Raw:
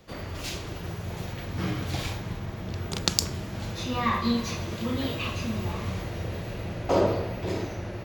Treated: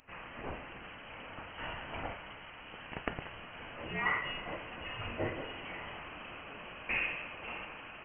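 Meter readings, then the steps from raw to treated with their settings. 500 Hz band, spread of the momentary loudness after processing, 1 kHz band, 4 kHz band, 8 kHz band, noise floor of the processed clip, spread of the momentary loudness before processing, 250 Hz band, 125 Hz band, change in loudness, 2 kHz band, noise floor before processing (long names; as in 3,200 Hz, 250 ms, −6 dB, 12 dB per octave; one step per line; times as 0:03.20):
−13.0 dB, 14 LU, −8.5 dB, −11.5 dB, below −40 dB, −50 dBFS, 10 LU, −17.0 dB, −18.5 dB, −9.5 dB, +0.5 dB, −38 dBFS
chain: first difference
voice inversion scrambler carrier 3,100 Hz
notch filter 390 Hz, Q 12
level +10 dB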